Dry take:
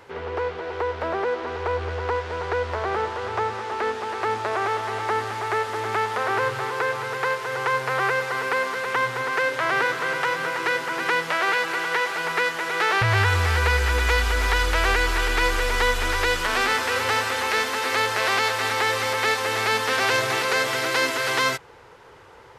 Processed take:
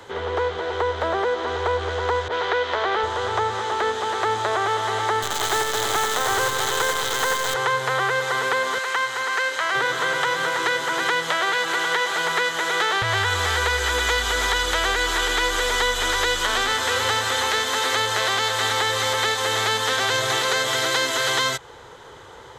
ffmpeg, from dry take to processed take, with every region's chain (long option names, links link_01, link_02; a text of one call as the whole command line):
ffmpeg -i in.wav -filter_complex "[0:a]asettb=1/sr,asplit=3[link_01][link_02][link_03];[link_01]atrim=end=2.284[link_04];[link_02]atrim=start=2.28:end=3.03,asetpts=PTS-STARTPTS,afade=type=in:duration=0.004:curve=qsin,afade=type=out:start_time=0.746:duration=0.004:curve=qsin,highpass=200,lowpass=3900,adynamicequalizer=threshold=0.01:dfrequency=1600:dqfactor=0.7:tfrequency=1600:tqfactor=0.7:attack=5:release=100:ratio=0.375:range=3:mode=boostabove:tftype=highshelf[link_05];[link_03]atrim=start=3.026[link_06];[link_04][link_05]acrossfade=duration=0.004:curve1=hsin:curve2=qsin[link_07];[link_07][link_06]acrossfade=duration=0.004:curve1=qsin:curve2=hsin,asettb=1/sr,asplit=3[link_08][link_09][link_10];[link_08]atrim=end=5.224[link_11];[link_09]atrim=start=5.22:end=7.54,asetpts=PTS-STARTPTS,afade=type=in:duration=0.004:curve=qsin,afade=type=out:start_time=2.316:duration=0.004:curve=qsin,acrusher=bits=5:dc=4:mix=0:aa=0.000001,aecho=1:1:87:0.531,atrim=end_sample=102312[link_12];[link_10]atrim=start=7.536[link_13];[link_11][link_12]acrossfade=duration=0.004:curve1=hsin:curve2=qsin[link_14];[link_14][link_13]acrossfade=duration=0.004:curve1=qsin:curve2=hsin,asettb=1/sr,asplit=3[link_15][link_16][link_17];[link_15]atrim=end=8.784[link_18];[link_16]atrim=start=8.78:end=9.75,asetpts=PTS-STARTPTS,afade=type=in:duration=0.004:curve=qsin,afade=type=out:start_time=0.966:duration=0.004:curve=qsin,highpass=frequency=1200:poles=1,highshelf=frequency=11000:gain=-4.5,bandreject=frequency=3500:width=9.1[link_19];[link_17]atrim=start=9.746[link_20];[link_18][link_19]acrossfade=duration=0.004:curve1=hsin:curve2=qsin[link_21];[link_21][link_20]acrossfade=duration=0.004:curve1=qsin:curve2=hsin,superequalizer=12b=0.631:13b=2:15b=2,acrossover=split=130|300[link_22][link_23][link_24];[link_22]acompressor=threshold=-39dB:ratio=4[link_25];[link_23]acompressor=threshold=-53dB:ratio=4[link_26];[link_24]acompressor=threshold=-24dB:ratio=4[link_27];[link_25][link_26][link_27]amix=inputs=3:normalize=0,volume=5dB" out.wav